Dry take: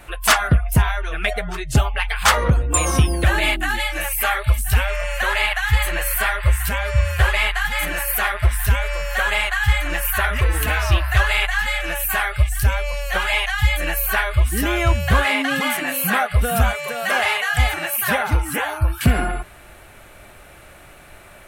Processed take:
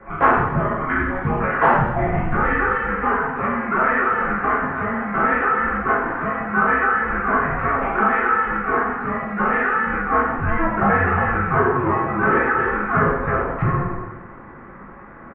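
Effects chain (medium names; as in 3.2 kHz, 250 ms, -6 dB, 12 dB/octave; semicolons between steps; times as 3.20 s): spectral sustain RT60 0.92 s; tempo 1.4×; two-slope reverb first 0.72 s, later 2.1 s, DRR -5 dB; mistuned SSB -360 Hz 190–2100 Hz; in parallel at -1 dB: compression, threshold -22 dBFS, peak gain reduction 15.5 dB; on the sum: trim -6.5 dB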